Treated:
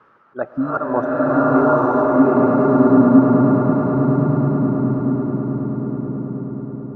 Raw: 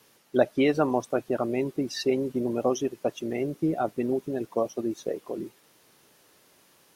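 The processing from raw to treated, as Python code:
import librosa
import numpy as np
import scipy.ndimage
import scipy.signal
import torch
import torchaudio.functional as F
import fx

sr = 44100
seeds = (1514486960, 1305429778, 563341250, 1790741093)

p1 = fx.filter_sweep_lowpass(x, sr, from_hz=1300.0, to_hz=190.0, start_s=1.35, end_s=2.39, q=6.6)
p2 = fx.spec_repair(p1, sr, seeds[0], start_s=0.55, length_s=0.23, low_hz=280.0, high_hz=4000.0, source='both')
p3 = fx.auto_swell(p2, sr, attack_ms=214.0)
p4 = fx.notch(p3, sr, hz=750.0, q=23.0)
p5 = p4 + fx.echo_swell(p4, sr, ms=107, loudest=8, wet_db=-13.0, dry=0)
p6 = fx.rev_bloom(p5, sr, seeds[1], attack_ms=960, drr_db=-7.5)
y = F.gain(torch.from_numpy(p6), 4.5).numpy()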